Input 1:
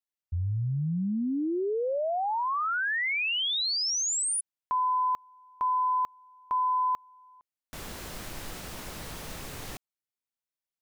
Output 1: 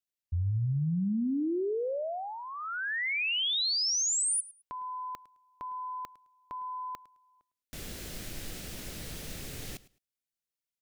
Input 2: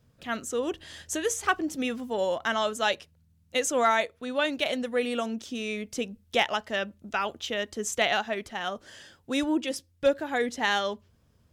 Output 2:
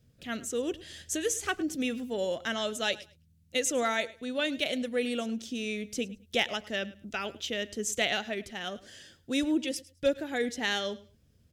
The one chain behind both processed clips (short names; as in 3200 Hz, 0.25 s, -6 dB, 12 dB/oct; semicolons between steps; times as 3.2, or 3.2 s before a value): bell 1000 Hz -12.5 dB 1.1 oct; on a send: feedback echo 0.106 s, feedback 20%, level -19.5 dB